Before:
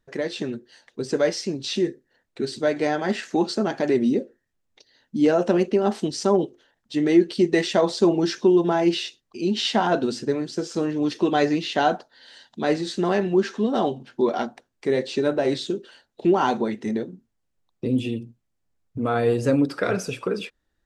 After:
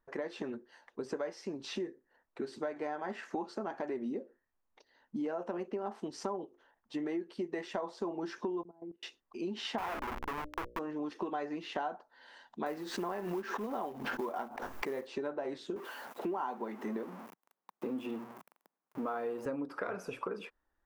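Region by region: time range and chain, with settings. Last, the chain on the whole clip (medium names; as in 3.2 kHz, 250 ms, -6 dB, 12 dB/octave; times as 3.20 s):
8.63–9.03 s: ladder band-pass 230 Hz, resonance 25% + level held to a coarse grid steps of 18 dB
9.78–10.79 s: Schmitt trigger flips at -26 dBFS + peaking EQ 2.3 kHz +8 dB 2.4 oct + hum notches 60/120/180/240/300/360/420/480/540/600 Hz
12.66–15.07 s: short-mantissa float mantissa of 2-bit + swell ahead of each attack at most 50 dB/s
15.76–19.46 s: jump at every zero crossing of -35.5 dBFS + high-pass 160 Hz 24 dB/octave
whole clip: ten-band graphic EQ 125 Hz -10 dB, 1 kHz +10 dB, 4 kHz -8 dB, 8 kHz -8 dB; compression 6:1, threshold -28 dBFS; trim -6.5 dB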